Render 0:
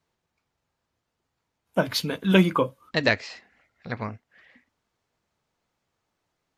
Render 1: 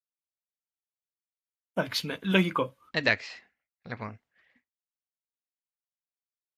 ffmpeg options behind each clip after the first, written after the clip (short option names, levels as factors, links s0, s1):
-af "agate=range=0.0224:threshold=0.00316:ratio=3:detection=peak,adynamicequalizer=threshold=0.0141:dfrequency=2300:dqfactor=0.71:tfrequency=2300:tqfactor=0.71:attack=5:release=100:ratio=0.375:range=3:mode=boostabove:tftype=bell,volume=0.473"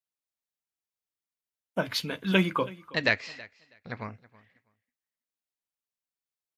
-af "aecho=1:1:324|648:0.0891|0.016"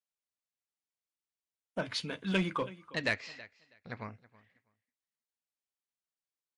-filter_complex "[0:a]asplit=2[s0][s1];[s1]aeval=exprs='0.0631*(abs(mod(val(0)/0.0631+3,4)-2)-1)':c=same,volume=0.355[s2];[s0][s2]amix=inputs=2:normalize=0,aresample=22050,aresample=44100,volume=0.422"